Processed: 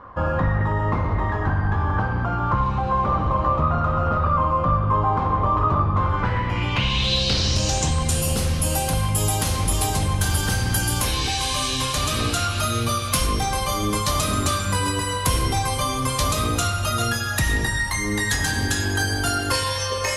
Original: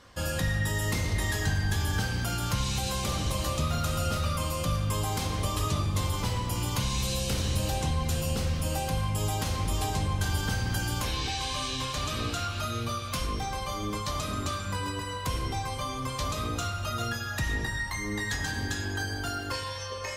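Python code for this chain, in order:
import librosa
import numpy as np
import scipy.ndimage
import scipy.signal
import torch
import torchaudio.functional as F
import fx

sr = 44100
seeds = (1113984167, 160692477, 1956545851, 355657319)

y = np.minimum(x, 2.0 * 10.0 ** (-22.5 / 20.0) - x)
y = fx.rider(y, sr, range_db=10, speed_s=2.0)
y = fx.filter_sweep_lowpass(y, sr, from_hz=1100.0, to_hz=11000.0, start_s=5.88, end_s=8.29, q=3.4)
y = F.gain(torch.from_numpy(y), 7.5).numpy()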